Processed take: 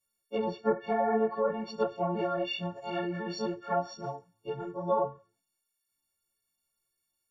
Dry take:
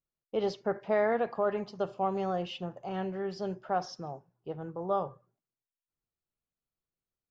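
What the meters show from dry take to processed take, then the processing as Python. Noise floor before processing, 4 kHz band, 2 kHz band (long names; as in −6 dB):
below −85 dBFS, +4.0 dB, 0.0 dB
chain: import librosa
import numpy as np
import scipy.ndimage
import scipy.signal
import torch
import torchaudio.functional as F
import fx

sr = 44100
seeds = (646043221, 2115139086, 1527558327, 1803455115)

y = fx.freq_snap(x, sr, grid_st=4)
y = fx.env_lowpass_down(y, sr, base_hz=980.0, full_db=-25.0)
y = fx.ensemble(y, sr)
y = y * librosa.db_to_amplitude(5.0)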